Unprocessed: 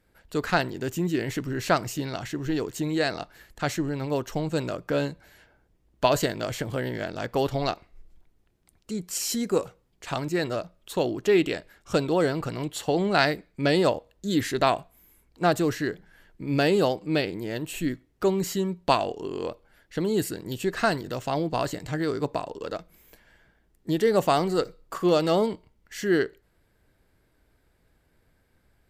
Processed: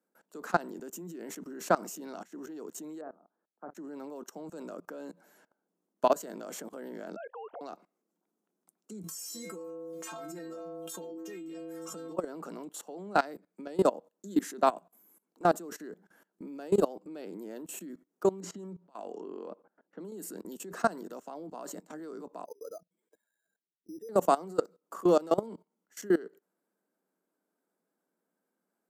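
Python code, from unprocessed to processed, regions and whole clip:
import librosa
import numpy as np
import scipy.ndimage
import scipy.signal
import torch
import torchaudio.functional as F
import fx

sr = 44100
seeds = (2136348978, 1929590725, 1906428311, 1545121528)

y = fx.chain(x, sr, fx.lowpass(hz=1300.0, slope=24),
    fx.doubler(ms=49.0, db=-8.0),
    fx.upward_expand(threshold_db=-38.0, expansion=2.5), at=(3.01, 3.75))
y = fx.chain(y, sr, fx.sine_speech(),
    fx.highpass(hz=590.0, slope=12), at=(7.16, 7.61))
y = fx.chain(y, sr, fx.peak_eq(hz=740.0, db=-4.5, octaves=1.1),
    fx.stiff_resonator(f0_hz=160.0, decay_s=0.6, stiffness=0.008),
    fx.env_flatten(amount_pct=100), at=(9.03, 12.17))
y = fx.chain(y, sr, fx.env_lowpass(base_hz=800.0, full_db=-22.0),
    fx.over_compress(threshold_db=-30.0, ratio=-0.5), at=(18.4, 20.12))
y = fx.chain(y, sr, fx.spec_expand(power=2.2),
    fx.highpass(hz=650.0, slope=6),
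    fx.resample_bad(factor=8, down='filtered', up='hold'), at=(22.45, 24.09))
y = scipy.signal.sosfilt(scipy.signal.butter(12, 180.0, 'highpass', fs=sr, output='sos'), y)
y = fx.band_shelf(y, sr, hz=2900.0, db=-11.0, octaves=1.7)
y = fx.level_steps(y, sr, step_db=21)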